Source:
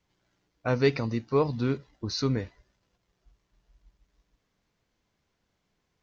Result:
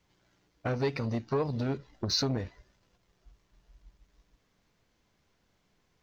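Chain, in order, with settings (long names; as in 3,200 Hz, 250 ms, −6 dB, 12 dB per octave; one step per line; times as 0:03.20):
in parallel at −6 dB: slack as between gear wheels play −38.5 dBFS
on the sum: downward compressor 8 to 1, threshold −28 dBFS, peak gain reduction 14.5 dB
saturating transformer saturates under 620 Hz
level +4 dB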